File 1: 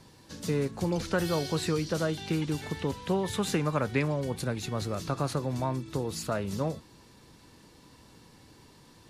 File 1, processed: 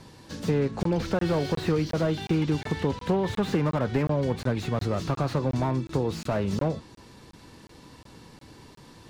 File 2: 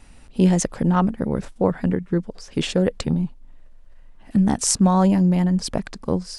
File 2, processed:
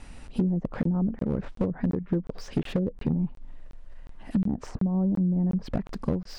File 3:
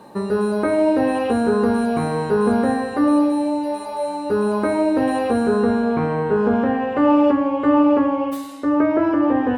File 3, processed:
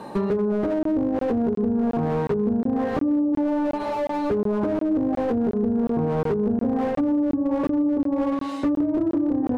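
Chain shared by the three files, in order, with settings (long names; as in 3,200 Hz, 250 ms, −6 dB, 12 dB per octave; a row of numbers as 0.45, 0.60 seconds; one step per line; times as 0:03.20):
treble cut that deepens with the level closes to 350 Hz, closed at −14 dBFS
high-shelf EQ 5,500 Hz −5.5 dB
downward compressor 12 to 1, threshold −25 dBFS
regular buffer underruns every 0.36 s, samples 1,024, zero, from 0:00.83
slew-rate limiting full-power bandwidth 22 Hz
normalise the peak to −12 dBFS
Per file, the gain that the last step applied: +6.5, +3.5, +6.5 decibels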